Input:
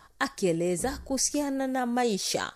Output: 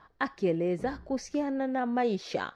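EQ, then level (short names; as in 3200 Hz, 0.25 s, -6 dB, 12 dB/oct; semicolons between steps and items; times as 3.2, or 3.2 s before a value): low shelf 71 Hz -10.5 dB; dynamic EQ 6500 Hz, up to +4 dB, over -48 dBFS, Q 5.3; air absorption 320 m; 0.0 dB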